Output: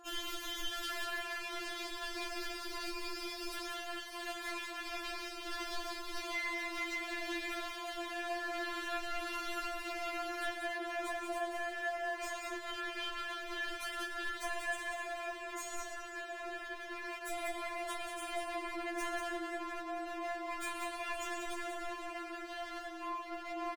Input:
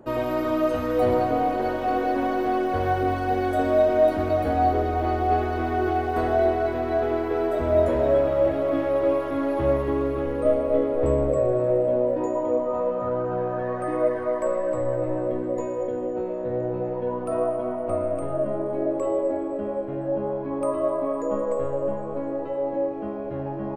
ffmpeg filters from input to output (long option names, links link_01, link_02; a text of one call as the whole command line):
ffmpeg -i in.wav -af "highpass=790,equalizer=frequency=5800:width_type=o:width=2.5:gain=7.5,acompressor=threshold=-31dB:ratio=10,aeval=exprs='0.0168*(abs(mod(val(0)/0.0168+3,4)-2)-1)':channel_layout=same,aecho=1:1:186:0.531,afftfilt=real='re*4*eq(mod(b,16),0)':imag='im*4*eq(mod(b,16),0)':win_size=2048:overlap=0.75,volume=3dB" out.wav